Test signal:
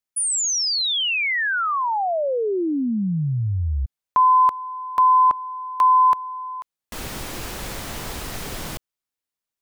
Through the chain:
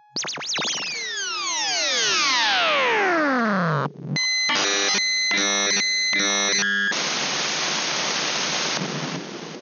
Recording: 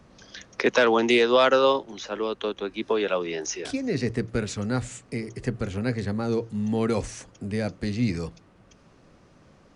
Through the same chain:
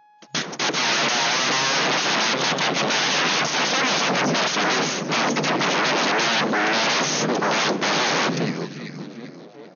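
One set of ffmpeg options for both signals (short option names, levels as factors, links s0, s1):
-filter_complex "[0:a]agate=range=0.00316:threshold=0.00631:ratio=16:release=307:detection=rms,lowshelf=f=220:g=5.5,asplit=5[s0][s1][s2][s3][s4];[s1]adelay=391,afreqshift=-100,volume=0.126[s5];[s2]adelay=782,afreqshift=-200,volume=0.0569[s6];[s3]adelay=1173,afreqshift=-300,volume=0.0254[s7];[s4]adelay=1564,afreqshift=-400,volume=0.0115[s8];[s0][s5][s6][s7][s8]amix=inputs=5:normalize=0,acrossover=split=340|730[s9][s10][s11];[s11]acompressor=threshold=0.0562:ratio=16:attack=19:release=402:knee=1:detection=peak[s12];[s9][s10][s12]amix=inputs=3:normalize=0,apsyclip=15.8,aeval=exprs='(mod(2.99*val(0)+1,2)-1)/2.99':c=same,aeval=exprs='val(0)+0.00631*sin(2*PI*420*n/s)':c=same,aeval=exprs='abs(val(0))':c=same,afftfilt=real='re*between(b*sr/4096,130,6700)':imag='im*between(b*sr/4096,130,6700)':win_size=4096:overlap=0.75"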